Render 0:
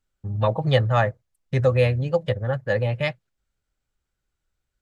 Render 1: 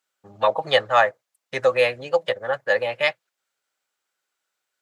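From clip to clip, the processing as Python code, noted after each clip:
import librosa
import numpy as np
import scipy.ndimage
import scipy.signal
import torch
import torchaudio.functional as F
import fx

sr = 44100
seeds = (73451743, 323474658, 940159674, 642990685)

y = scipy.signal.sosfilt(scipy.signal.butter(2, 620.0, 'highpass', fs=sr, output='sos'), x)
y = y * librosa.db_to_amplitude(6.5)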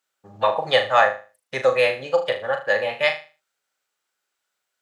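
y = fx.room_flutter(x, sr, wall_m=6.6, rt60_s=0.34)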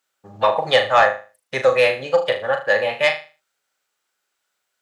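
y = 10.0 ** (-7.0 / 20.0) * np.tanh(x / 10.0 ** (-7.0 / 20.0))
y = y * librosa.db_to_amplitude(3.5)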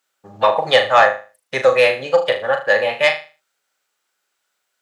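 y = fx.low_shelf(x, sr, hz=90.0, db=-8.5)
y = y * librosa.db_to_amplitude(2.5)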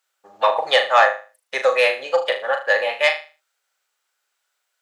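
y = scipy.signal.sosfilt(scipy.signal.butter(2, 510.0, 'highpass', fs=sr, output='sos'), x)
y = y * librosa.db_to_amplitude(-1.5)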